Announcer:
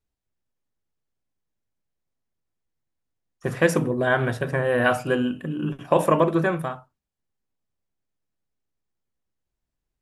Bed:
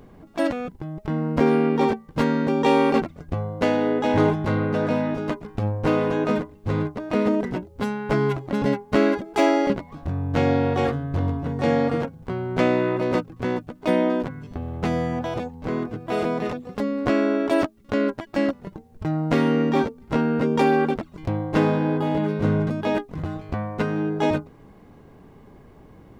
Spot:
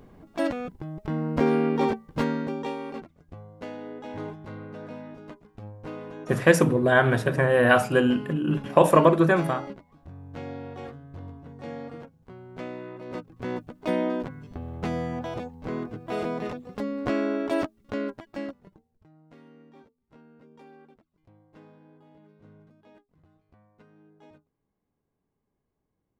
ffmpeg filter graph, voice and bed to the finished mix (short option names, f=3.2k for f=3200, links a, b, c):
-filter_complex "[0:a]adelay=2850,volume=2dB[a];[1:a]volume=8dB,afade=t=out:st=2.14:d=0.62:silence=0.211349,afade=t=in:st=13.04:d=0.55:silence=0.266073,afade=t=out:st=17.58:d=1.49:silence=0.0446684[b];[a][b]amix=inputs=2:normalize=0"